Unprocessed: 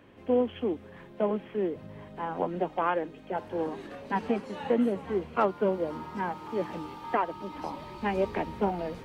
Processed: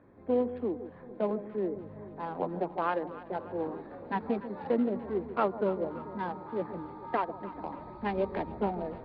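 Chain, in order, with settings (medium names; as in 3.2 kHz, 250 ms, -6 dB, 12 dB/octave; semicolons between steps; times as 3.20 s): local Wiener filter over 15 samples; steep low-pass 4.5 kHz 48 dB/octave; echo whose repeats swap between lows and highs 146 ms, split 870 Hz, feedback 73%, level -12.5 dB; trim -2.5 dB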